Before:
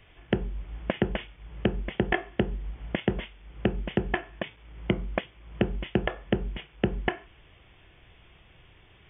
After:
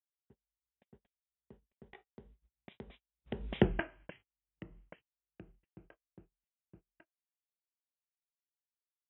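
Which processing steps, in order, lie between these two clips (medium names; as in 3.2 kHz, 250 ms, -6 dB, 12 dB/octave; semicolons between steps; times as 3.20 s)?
Doppler pass-by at 3.64 s, 31 m/s, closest 1.9 m; gate -58 dBFS, range -33 dB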